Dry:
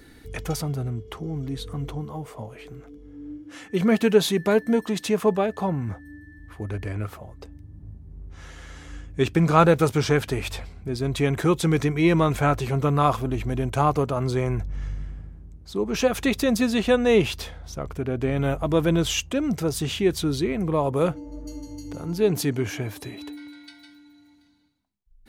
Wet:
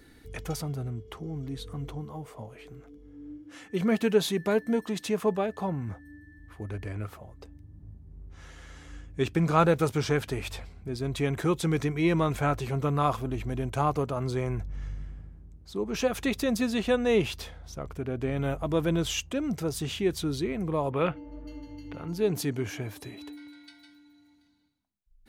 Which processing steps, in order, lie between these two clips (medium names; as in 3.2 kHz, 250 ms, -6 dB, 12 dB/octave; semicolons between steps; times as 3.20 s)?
20.91–22.08 s: FFT filter 490 Hz 0 dB, 2.8 kHz +10 dB, 7.2 kHz -18 dB, 13 kHz -12 dB; trim -5.5 dB